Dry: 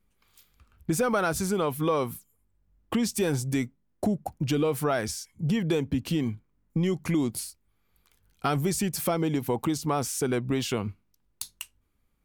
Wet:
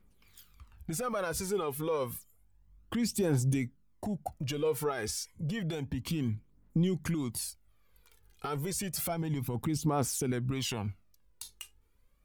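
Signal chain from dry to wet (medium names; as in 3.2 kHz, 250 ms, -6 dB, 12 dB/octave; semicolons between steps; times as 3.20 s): 9.08–9.77 s: bass shelf 200 Hz +7.5 dB; compression 2:1, threshold -32 dBFS, peak gain reduction 7 dB; peak limiter -26.5 dBFS, peak gain reduction 9.5 dB; phaser 0.3 Hz, delay 2.5 ms, feedback 55%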